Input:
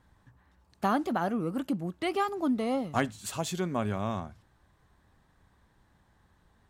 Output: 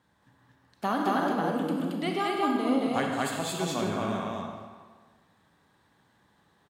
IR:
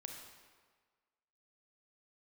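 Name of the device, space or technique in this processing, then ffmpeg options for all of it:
stadium PA: -filter_complex "[0:a]highpass=150,equalizer=f=3.5k:t=o:w=0.77:g=3.5,aecho=1:1:151.6|224.5:0.251|0.891[a];[1:a]atrim=start_sample=2205[b];[a][b]afir=irnorm=-1:irlink=0,asettb=1/sr,asplit=3[c][d][e];[c]atrim=end=2.284[f];[d]atrim=start=2.28:end=3.61,asetpts=PTS-STARTPTS,afade=t=in:d=0.004:c=qsin,afade=t=out:st=1.326:d=0.004:c=qsin,bandreject=f=5.7k:w=5.6[g];[e]atrim=start=3.606[h];[f][g]acrossfade=d=0.004:c1=hsin:c2=qsin[i];[i][h]acrossfade=d=0.004:c1=qsin:c2=hsin,volume=3.5dB"

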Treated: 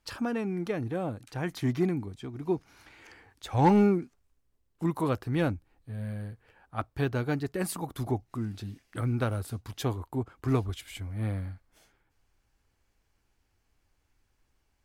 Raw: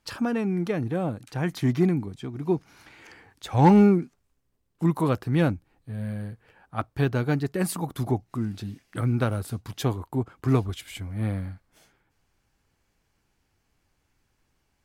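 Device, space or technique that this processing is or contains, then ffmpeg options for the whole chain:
low shelf boost with a cut just above: -af "lowshelf=f=84:g=6.5,equalizer=f=160:t=o:w=0.95:g=-5.5,volume=-3.5dB"

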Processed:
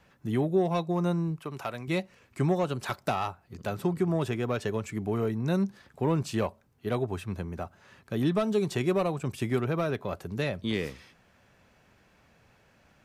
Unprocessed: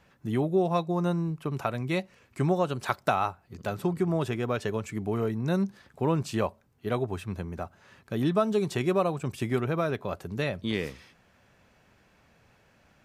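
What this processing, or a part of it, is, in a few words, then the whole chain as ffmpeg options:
one-band saturation: -filter_complex "[0:a]acrossover=split=480|3000[a][b][c];[b]asoftclip=type=tanh:threshold=-26dB[d];[a][d][c]amix=inputs=3:normalize=0,asettb=1/sr,asplit=3[e][f][g];[e]atrim=end=1.394[h];[f]atrim=start=1.39:end=1.88,asetpts=PTS-STARTPTS,afade=t=in:d=0.004:c=qsin,afade=t=out:st=0.486:d=0.004:c=qsin,lowshelf=f=350:g=-10[i];[g]atrim=start=1.876[j];[h][i]acrossfade=d=0.004:c1=hsin:c2=qsin[k];[k][j]acrossfade=d=0.004:c1=qsin:c2=hsin"

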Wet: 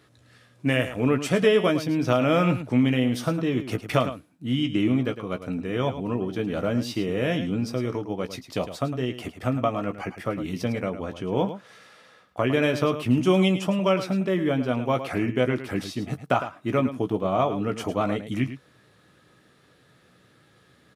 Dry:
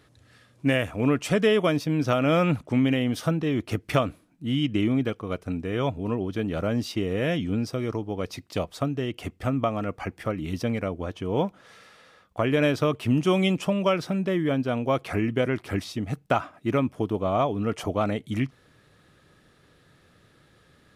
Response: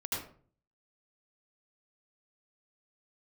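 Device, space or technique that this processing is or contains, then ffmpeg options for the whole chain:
slapback doubling: -filter_complex "[0:a]asplit=3[a][b][c];[b]adelay=16,volume=-8.5dB[d];[c]adelay=107,volume=-11dB[e];[a][d][e]amix=inputs=3:normalize=0,highpass=98"

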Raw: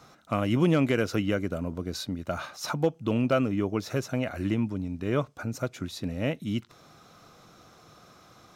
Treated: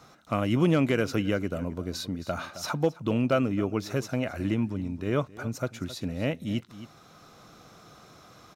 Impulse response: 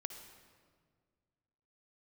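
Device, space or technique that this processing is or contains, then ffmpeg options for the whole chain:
ducked delay: -filter_complex "[0:a]asplit=3[a][b][c];[b]adelay=267,volume=-2.5dB[d];[c]apad=whole_len=388946[e];[d][e]sidechaincompress=threshold=-44dB:ratio=4:attack=40:release=673[f];[a][f]amix=inputs=2:normalize=0"

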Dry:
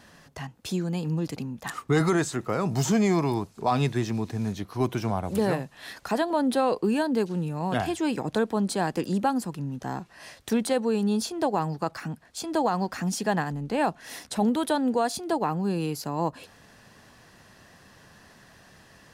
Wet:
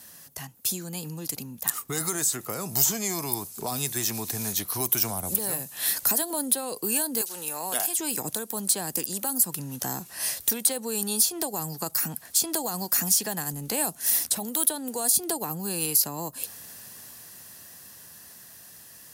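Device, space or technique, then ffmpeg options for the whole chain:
FM broadcast chain: -filter_complex "[0:a]asettb=1/sr,asplit=3[a][b][c];[a]atrim=end=7.214[d];[b]atrim=start=7.21:end=7.99,asetpts=PTS-STARTPTS,afade=t=in:d=0.004:c=qsin,afade=t=out:st=0.776:d=0.004:c=qsin,highpass=640[e];[c]atrim=start=7.986[f];[d][e]acrossfade=d=0.004:c1=hsin:c2=qsin[g];[g][f]acrossfade=d=0.004:c1=qsin:c2=hsin,highpass=54,dynaudnorm=f=410:g=17:m=10.5dB,acrossover=split=500|5700[h][i][j];[h]acompressor=threshold=-30dB:ratio=4[k];[i]acompressor=threshold=-31dB:ratio=4[l];[j]acompressor=threshold=-37dB:ratio=4[m];[k][l][m]amix=inputs=3:normalize=0,aemphasis=mode=production:type=50fm,alimiter=limit=-14dB:level=0:latency=1:release=422,asoftclip=type=hard:threshold=-16dB,lowpass=f=15k:w=0.5412,lowpass=f=15k:w=1.3066,aemphasis=mode=production:type=50fm,volume=-4.5dB"

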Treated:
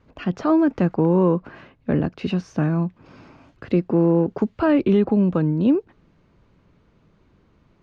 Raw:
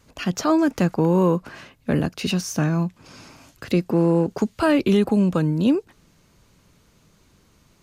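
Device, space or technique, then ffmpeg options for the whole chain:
phone in a pocket: -af "lowpass=3.4k,equalizer=f=340:t=o:w=0.77:g=2,highshelf=f=2.3k:g=-9"

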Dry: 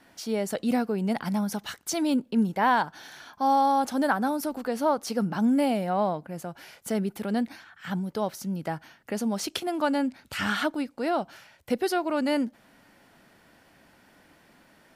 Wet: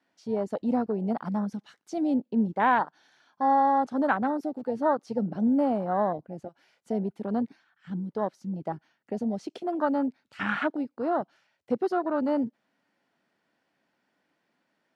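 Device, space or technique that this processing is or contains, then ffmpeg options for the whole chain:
over-cleaned archive recording: -af "highpass=170,lowpass=6.4k,afwtdn=0.0355"

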